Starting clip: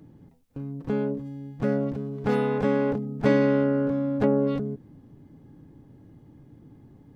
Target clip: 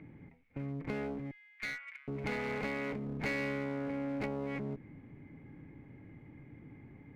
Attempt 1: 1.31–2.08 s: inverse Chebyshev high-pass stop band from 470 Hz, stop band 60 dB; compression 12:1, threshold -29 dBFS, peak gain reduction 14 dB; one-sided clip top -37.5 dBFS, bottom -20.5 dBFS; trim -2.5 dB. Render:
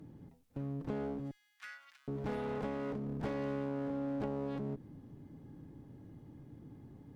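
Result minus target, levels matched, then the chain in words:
2 kHz band -10.0 dB
1.31–2.08 s: inverse Chebyshev high-pass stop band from 470 Hz, stop band 60 dB; compression 12:1, threshold -29 dBFS, peak gain reduction 14 dB; resonant low-pass 2.2 kHz, resonance Q 13; one-sided clip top -37.5 dBFS, bottom -20.5 dBFS; trim -2.5 dB

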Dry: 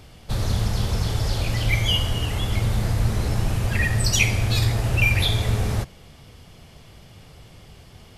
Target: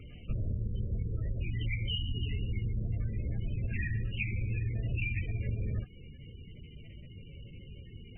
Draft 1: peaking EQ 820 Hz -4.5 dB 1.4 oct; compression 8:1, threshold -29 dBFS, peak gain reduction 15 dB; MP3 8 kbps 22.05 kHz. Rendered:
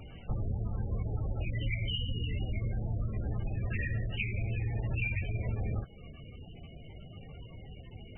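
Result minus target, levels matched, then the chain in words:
1 kHz band +16.5 dB
peaking EQ 820 Hz -14 dB 1.4 oct; compression 8:1, threshold -29 dBFS, peak gain reduction 14 dB; MP3 8 kbps 22.05 kHz

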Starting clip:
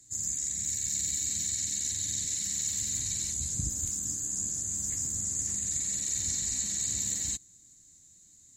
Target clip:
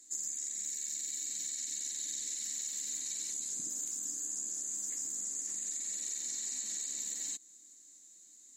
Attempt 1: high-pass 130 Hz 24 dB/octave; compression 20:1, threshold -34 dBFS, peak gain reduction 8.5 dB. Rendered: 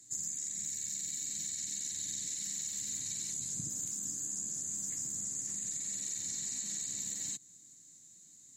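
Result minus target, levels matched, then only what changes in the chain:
125 Hz band +17.0 dB
change: high-pass 270 Hz 24 dB/octave

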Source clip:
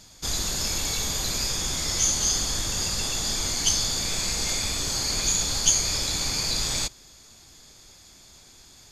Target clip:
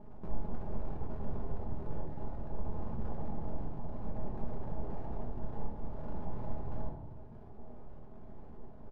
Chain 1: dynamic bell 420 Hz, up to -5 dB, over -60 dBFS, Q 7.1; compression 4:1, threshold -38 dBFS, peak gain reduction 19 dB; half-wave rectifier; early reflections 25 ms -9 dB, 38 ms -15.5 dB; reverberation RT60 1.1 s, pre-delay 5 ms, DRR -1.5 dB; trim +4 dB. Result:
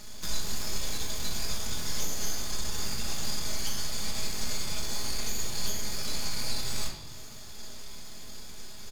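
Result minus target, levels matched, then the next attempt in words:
1 kHz band -7.0 dB
dynamic bell 420 Hz, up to -5 dB, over -60 dBFS, Q 7.1; compression 4:1, threshold -38 dBFS, peak gain reduction 19 dB; steep low-pass 930 Hz 48 dB/octave; half-wave rectifier; early reflections 25 ms -9 dB, 38 ms -15.5 dB; reverberation RT60 1.1 s, pre-delay 5 ms, DRR -1.5 dB; trim +4 dB

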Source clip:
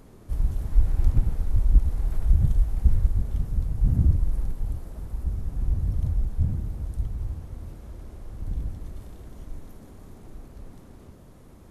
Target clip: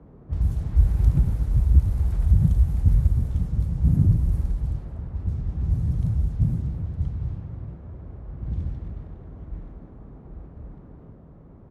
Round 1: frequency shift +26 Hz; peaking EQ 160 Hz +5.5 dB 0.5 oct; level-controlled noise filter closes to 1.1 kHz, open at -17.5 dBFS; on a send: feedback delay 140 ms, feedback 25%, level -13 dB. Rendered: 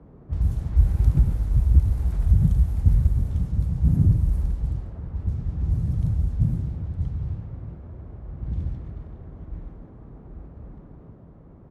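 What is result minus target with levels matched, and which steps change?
echo 103 ms early
change: feedback delay 243 ms, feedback 25%, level -13 dB

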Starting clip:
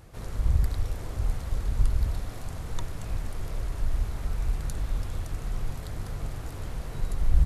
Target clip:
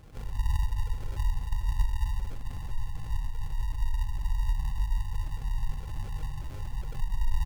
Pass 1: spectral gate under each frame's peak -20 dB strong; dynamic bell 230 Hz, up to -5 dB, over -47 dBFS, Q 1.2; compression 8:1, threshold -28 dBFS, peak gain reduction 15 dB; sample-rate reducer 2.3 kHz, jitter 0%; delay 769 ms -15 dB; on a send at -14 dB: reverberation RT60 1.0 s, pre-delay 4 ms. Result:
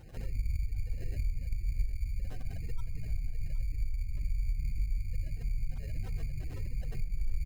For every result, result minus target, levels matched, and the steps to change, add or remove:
compression: peak gain reduction +5.5 dB; sample-rate reducer: distortion -7 dB
change: compression 8:1, threshold -21.5 dBFS, peak gain reduction 9.5 dB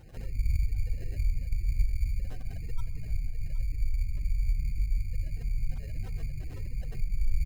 sample-rate reducer: distortion -7 dB
change: sample-rate reducer 940 Hz, jitter 0%

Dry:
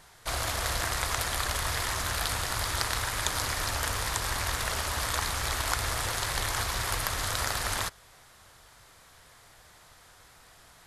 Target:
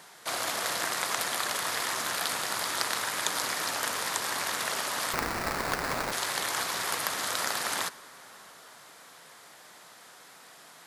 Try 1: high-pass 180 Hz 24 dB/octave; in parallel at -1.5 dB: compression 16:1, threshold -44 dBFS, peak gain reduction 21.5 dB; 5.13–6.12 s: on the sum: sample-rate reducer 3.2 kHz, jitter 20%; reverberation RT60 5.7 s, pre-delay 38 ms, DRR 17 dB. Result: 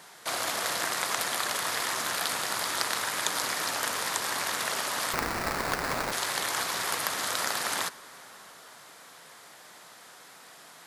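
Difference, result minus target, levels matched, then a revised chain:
compression: peak gain reduction -10.5 dB
high-pass 180 Hz 24 dB/octave; in parallel at -1.5 dB: compression 16:1, threshold -55 dBFS, peak gain reduction 32 dB; 5.13–6.12 s: on the sum: sample-rate reducer 3.2 kHz, jitter 20%; reverberation RT60 5.7 s, pre-delay 38 ms, DRR 17 dB

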